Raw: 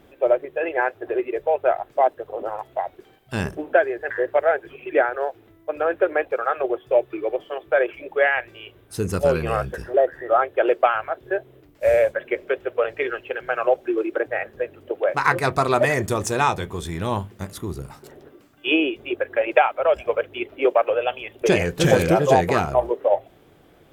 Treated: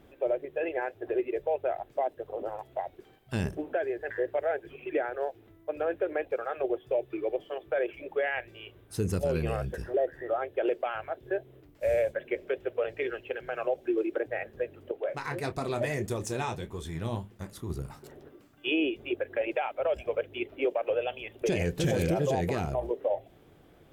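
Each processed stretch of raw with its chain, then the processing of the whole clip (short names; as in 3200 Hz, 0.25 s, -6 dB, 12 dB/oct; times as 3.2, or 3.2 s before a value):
14.91–17.7 doubler 26 ms -13 dB + flange 1.6 Hz, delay 1.6 ms, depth 8.1 ms, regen +63%
whole clip: low shelf 240 Hz +4.5 dB; limiter -12 dBFS; dynamic EQ 1200 Hz, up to -8 dB, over -39 dBFS, Q 1.4; gain -6 dB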